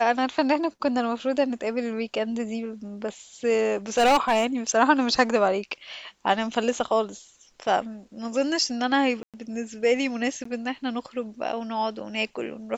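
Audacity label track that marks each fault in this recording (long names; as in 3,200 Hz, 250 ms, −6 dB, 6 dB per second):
3.970000	4.460000	clipping −15 dBFS
9.230000	9.340000	drop-out 107 ms
10.440000	10.450000	drop-out 14 ms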